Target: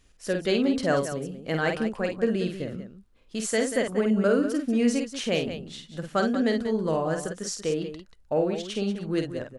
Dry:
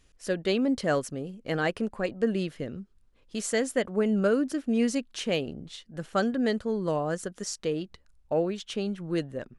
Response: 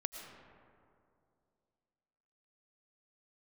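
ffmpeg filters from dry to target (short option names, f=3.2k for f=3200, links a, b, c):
-af "aecho=1:1:50|186:0.531|0.299,volume=1dB"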